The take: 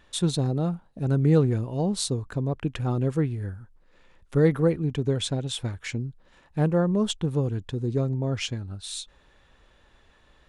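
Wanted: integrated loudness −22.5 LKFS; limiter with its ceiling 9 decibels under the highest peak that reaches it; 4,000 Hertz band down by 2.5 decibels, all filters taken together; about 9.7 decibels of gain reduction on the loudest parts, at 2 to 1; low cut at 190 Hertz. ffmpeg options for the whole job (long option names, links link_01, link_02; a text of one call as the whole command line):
ffmpeg -i in.wav -af "highpass=190,equalizer=frequency=4000:width_type=o:gain=-3,acompressor=threshold=-34dB:ratio=2,volume=15dB,alimiter=limit=-10.5dB:level=0:latency=1" out.wav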